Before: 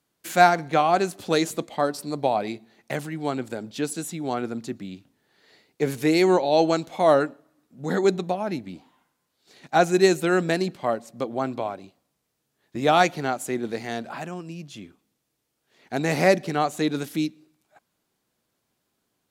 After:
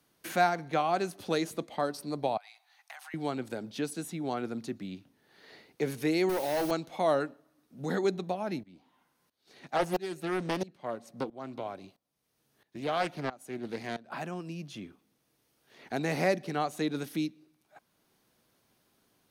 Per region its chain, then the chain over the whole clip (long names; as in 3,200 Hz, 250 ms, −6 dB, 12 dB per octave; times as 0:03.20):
0:02.37–0:03.14: Chebyshev high-pass filter 750 Hz, order 5 + downward compressor 5 to 1, threshold −43 dBFS
0:06.29–0:06.71: gain into a clipping stage and back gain 19.5 dB + bit-depth reduction 6 bits, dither triangular
0:08.63–0:14.12: shaped tremolo saw up 1.5 Hz, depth 90% + highs frequency-modulated by the lows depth 0.71 ms
whole clip: notch filter 7,400 Hz, Q 6.2; multiband upward and downward compressor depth 40%; level −7 dB